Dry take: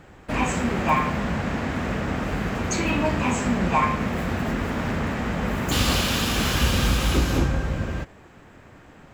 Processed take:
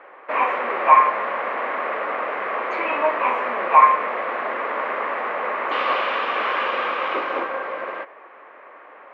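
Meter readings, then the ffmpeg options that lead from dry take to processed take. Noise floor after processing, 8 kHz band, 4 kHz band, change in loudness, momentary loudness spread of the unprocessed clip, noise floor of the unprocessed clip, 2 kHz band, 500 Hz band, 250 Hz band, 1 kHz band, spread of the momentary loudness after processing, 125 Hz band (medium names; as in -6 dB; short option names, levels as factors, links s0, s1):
-45 dBFS, under -30 dB, -7.0 dB, +3.0 dB, 6 LU, -49 dBFS, +3.5 dB, +4.0 dB, -14.5 dB, +9.0 dB, 11 LU, under -30 dB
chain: -filter_complex "[0:a]asplit=2[s0][s1];[s1]aeval=exprs='(mod(16.8*val(0)+1,2)-1)/16.8':c=same,volume=0.282[s2];[s0][s2]amix=inputs=2:normalize=0,highpass=f=430:w=0.5412,highpass=f=430:w=1.3066,equalizer=f=560:t=q:w=4:g=5,equalizer=f=1100:t=q:w=4:g=10,equalizer=f=2100:t=q:w=4:g=4,lowpass=f=2500:w=0.5412,lowpass=f=2500:w=1.3066,volume=1.26"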